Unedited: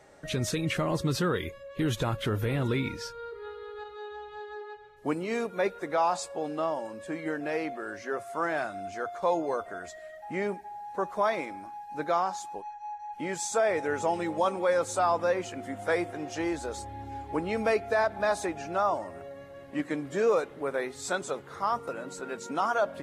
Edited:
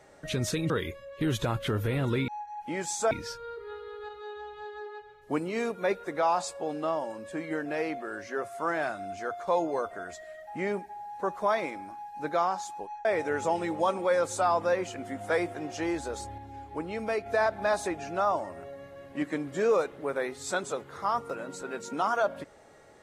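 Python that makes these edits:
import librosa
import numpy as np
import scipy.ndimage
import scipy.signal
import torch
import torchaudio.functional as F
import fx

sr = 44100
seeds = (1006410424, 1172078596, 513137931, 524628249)

y = fx.edit(x, sr, fx.cut(start_s=0.7, length_s=0.58),
    fx.move(start_s=12.8, length_s=0.83, to_s=2.86),
    fx.clip_gain(start_s=16.96, length_s=0.88, db=-4.5), tone=tone)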